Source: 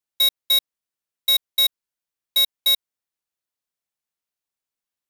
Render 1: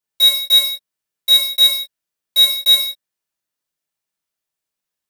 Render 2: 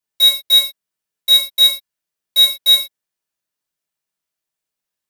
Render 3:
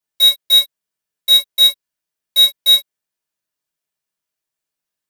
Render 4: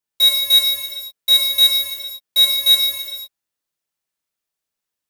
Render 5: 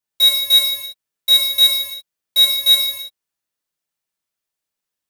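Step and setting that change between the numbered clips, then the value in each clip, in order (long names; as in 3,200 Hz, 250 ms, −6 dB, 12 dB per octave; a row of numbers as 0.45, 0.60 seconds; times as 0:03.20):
reverb whose tail is shaped and stops, gate: 210, 140, 80, 540, 360 milliseconds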